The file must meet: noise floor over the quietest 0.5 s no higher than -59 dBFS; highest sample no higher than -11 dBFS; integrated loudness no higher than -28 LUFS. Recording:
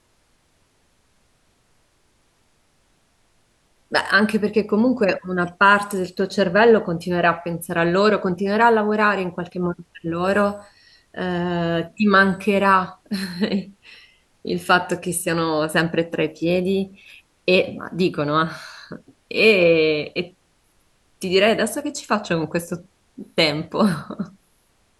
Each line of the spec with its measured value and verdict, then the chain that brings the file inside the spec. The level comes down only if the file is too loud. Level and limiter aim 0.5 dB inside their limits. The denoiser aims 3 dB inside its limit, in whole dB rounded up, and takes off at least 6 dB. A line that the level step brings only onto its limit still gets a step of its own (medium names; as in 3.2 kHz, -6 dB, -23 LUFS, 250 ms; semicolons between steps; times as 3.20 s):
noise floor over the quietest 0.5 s -62 dBFS: pass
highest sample -2.5 dBFS: fail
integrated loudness -20.0 LUFS: fail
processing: trim -8.5 dB; peak limiter -11.5 dBFS